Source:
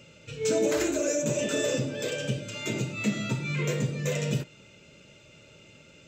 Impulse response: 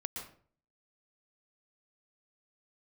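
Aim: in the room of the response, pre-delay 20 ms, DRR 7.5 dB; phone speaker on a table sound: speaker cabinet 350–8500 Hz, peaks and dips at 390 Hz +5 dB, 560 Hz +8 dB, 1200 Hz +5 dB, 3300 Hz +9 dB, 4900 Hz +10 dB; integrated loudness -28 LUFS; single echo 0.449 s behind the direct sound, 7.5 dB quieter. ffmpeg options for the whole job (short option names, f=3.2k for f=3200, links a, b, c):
-filter_complex "[0:a]aecho=1:1:449:0.422,asplit=2[a][b];[1:a]atrim=start_sample=2205,adelay=20[c];[b][c]afir=irnorm=-1:irlink=0,volume=-7.5dB[d];[a][d]amix=inputs=2:normalize=0,highpass=f=350:w=0.5412,highpass=f=350:w=1.3066,equalizer=f=390:t=q:w=4:g=5,equalizer=f=560:t=q:w=4:g=8,equalizer=f=1.2k:t=q:w=4:g=5,equalizer=f=3.3k:t=q:w=4:g=9,equalizer=f=4.9k:t=q:w=4:g=10,lowpass=f=8.5k:w=0.5412,lowpass=f=8.5k:w=1.3066,volume=-3dB"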